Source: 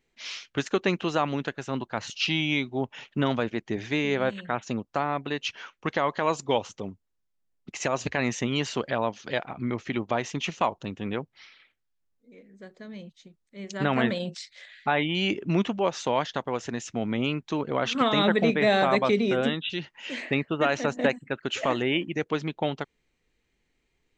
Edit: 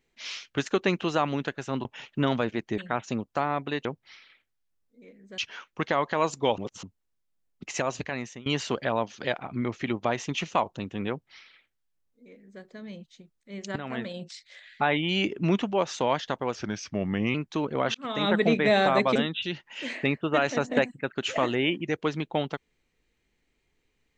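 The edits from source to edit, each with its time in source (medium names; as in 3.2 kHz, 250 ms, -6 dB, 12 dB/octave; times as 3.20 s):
1.85–2.84 s: delete
3.77–4.37 s: delete
6.64–6.89 s: reverse
7.79–8.52 s: fade out, to -21 dB
11.15–12.68 s: copy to 5.44 s
13.82–14.89 s: fade in, from -14.5 dB
16.61–17.31 s: speed 88%
17.91–18.36 s: fade in
19.12–19.43 s: delete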